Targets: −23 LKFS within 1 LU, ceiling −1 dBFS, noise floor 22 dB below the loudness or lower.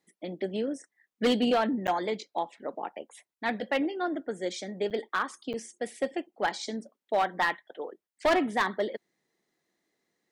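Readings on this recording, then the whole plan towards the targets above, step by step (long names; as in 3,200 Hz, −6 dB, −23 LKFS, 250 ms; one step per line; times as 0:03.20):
share of clipped samples 0.6%; peaks flattened at −19.0 dBFS; number of dropouts 3; longest dropout 7.9 ms; integrated loudness −30.5 LKFS; sample peak −19.0 dBFS; target loudness −23.0 LKFS
→ clipped peaks rebuilt −19 dBFS
repair the gap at 0:01.87/0:04.90/0:05.53, 7.9 ms
level +7.5 dB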